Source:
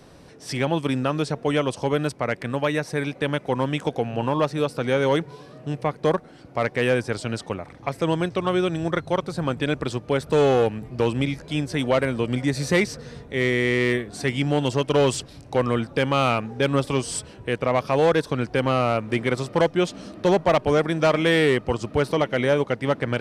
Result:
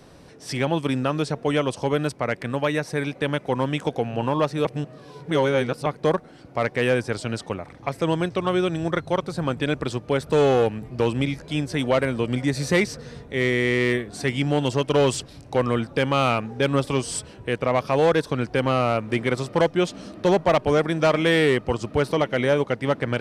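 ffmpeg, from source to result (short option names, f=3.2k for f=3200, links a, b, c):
-filter_complex "[0:a]asplit=3[a][b][c];[a]atrim=end=4.652[d];[b]atrim=start=4.648:end=5.862,asetpts=PTS-STARTPTS,areverse[e];[c]atrim=start=5.858[f];[d][e]acrossfade=d=0.004:c1=hsin:c2=hsin[g];[g][f]acrossfade=d=0.004:c1=hsin:c2=hsin"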